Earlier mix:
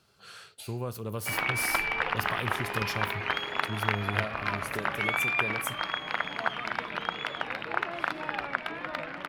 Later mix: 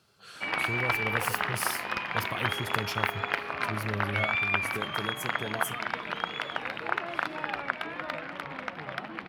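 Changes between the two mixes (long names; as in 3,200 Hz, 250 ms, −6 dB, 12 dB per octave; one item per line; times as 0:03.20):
first sound: entry −0.85 s
master: add high-pass filter 60 Hz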